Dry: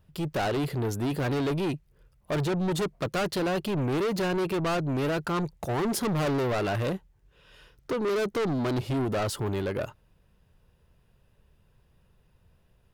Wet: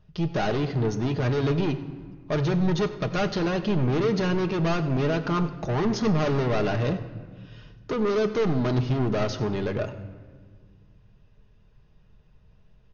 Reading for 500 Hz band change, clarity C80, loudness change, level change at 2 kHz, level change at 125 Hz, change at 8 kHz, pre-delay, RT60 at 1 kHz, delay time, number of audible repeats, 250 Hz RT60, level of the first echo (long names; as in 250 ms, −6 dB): +2.5 dB, 12.5 dB, +3.0 dB, +1.0 dB, +5.0 dB, −4.5 dB, 5 ms, 1.6 s, 97 ms, 1, 2.5 s, −18.5 dB